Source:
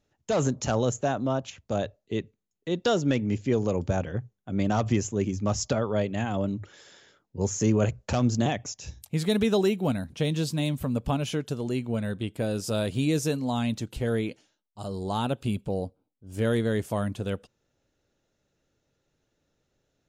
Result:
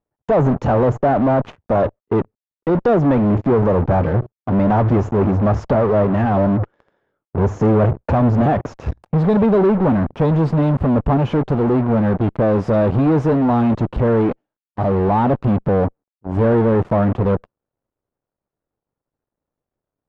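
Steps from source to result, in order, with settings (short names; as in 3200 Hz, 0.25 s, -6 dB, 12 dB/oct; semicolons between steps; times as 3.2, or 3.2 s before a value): G.711 law mismatch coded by A; in parallel at -3 dB: fuzz box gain 46 dB, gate -48 dBFS; on the sum: Chebyshev low-pass 990 Hz, order 2; gain +1.5 dB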